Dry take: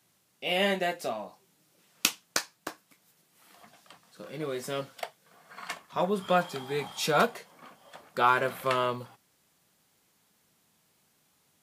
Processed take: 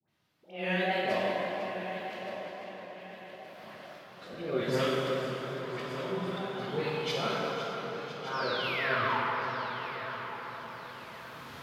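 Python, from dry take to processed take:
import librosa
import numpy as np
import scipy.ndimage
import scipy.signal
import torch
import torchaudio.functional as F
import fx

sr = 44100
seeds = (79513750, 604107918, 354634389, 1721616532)

p1 = fx.recorder_agc(x, sr, target_db=-11.0, rise_db_per_s=8.5, max_gain_db=30)
p2 = fx.auto_swell(p1, sr, attack_ms=295.0)
p3 = F.preemphasis(torch.from_numpy(p2), 0.8).numpy()
p4 = fx.dispersion(p3, sr, late='highs', ms=93.0, hz=1000.0)
p5 = fx.wow_flutter(p4, sr, seeds[0], rate_hz=2.1, depth_cents=150.0)
p6 = fx.spec_paint(p5, sr, seeds[1], shape='fall', start_s=8.33, length_s=0.85, low_hz=820.0, high_hz=5700.0, level_db=-39.0)
p7 = fx.air_absorb(p6, sr, metres=330.0)
p8 = p7 + fx.echo_feedback(p7, sr, ms=1170, feedback_pct=38, wet_db=-12.5, dry=0)
p9 = fx.rev_plate(p8, sr, seeds[2], rt60_s=4.1, hf_ratio=0.6, predelay_ms=0, drr_db=-5.0)
p10 = fx.echo_warbled(p9, sr, ms=504, feedback_pct=65, rate_hz=2.8, cents=96, wet_db=-12)
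y = p10 * librosa.db_to_amplitude(5.0)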